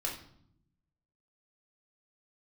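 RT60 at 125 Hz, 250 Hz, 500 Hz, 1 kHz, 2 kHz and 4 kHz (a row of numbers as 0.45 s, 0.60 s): 1.3 s, 1.2 s, 0.70 s, 0.60 s, 0.50 s, 0.50 s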